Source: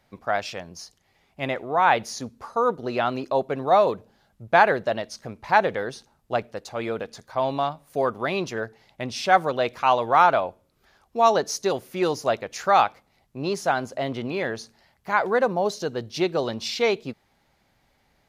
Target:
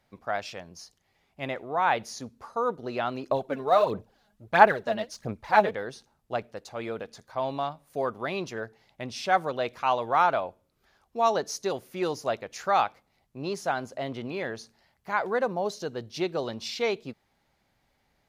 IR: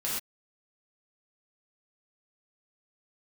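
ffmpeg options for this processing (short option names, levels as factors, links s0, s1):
-filter_complex "[0:a]asettb=1/sr,asplit=3[s0][s1][s2];[s0]atrim=end=3.304[s3];[s1]atrim=start=3.3:end=5.71,asetpts=PTS-STARTPTS,afade=t=in:d=0.004:c=qsin,afade=t=out:st=2.406:d=0.004:c=qsin,aphaser=in_gain=1:out_gain=1:delay=4.9:decay=0.65:speed=1.5:type=sinusoidal[s4];[s2]atrim=start=5.706[s5];[s3][s4]acrossfade=d=0.004:c1=hsin:c2=qsin[s6];[s6][s5]acrossfade=d=0.004:c1=qsin:c2=hsin,volume=0.531"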